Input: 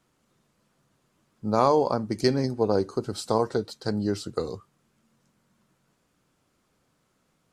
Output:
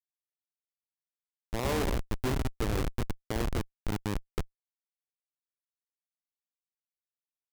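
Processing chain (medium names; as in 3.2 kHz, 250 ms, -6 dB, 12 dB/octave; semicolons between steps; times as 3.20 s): spectral sustain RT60 0.63 s; spring tank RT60 2 s, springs 46/53/58 ms, chirp 75 ms, DRR 10 dB; Schmitt trigger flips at -18.5 dBFS; trim -1 dB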